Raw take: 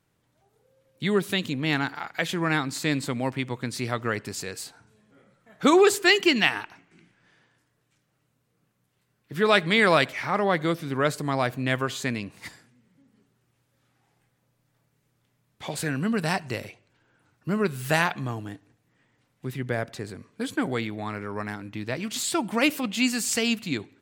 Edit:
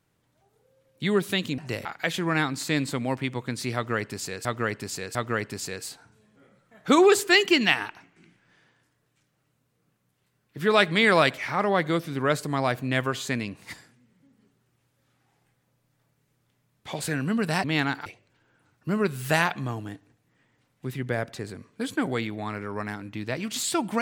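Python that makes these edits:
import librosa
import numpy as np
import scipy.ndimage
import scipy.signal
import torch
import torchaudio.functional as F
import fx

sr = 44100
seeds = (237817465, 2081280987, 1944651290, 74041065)

y = fx.edit(x, sr, fx.swap(start_s=1.58, length_s=0.42, other_s=16.39, other_length_s=0.27),
    fx.repeat(start_s=3.9, length_s=0.7, count=3), tone=tone)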